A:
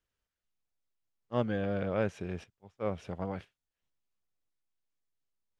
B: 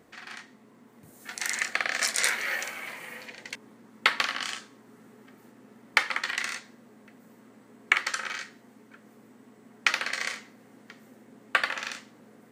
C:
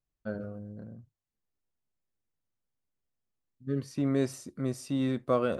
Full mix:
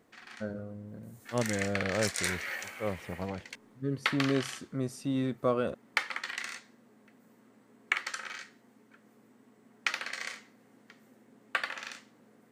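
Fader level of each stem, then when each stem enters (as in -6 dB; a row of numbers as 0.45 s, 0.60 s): -0.5 dB, -7.0 dB, -1.5 dB; 0.00 s, 0.00 s, 0.15 s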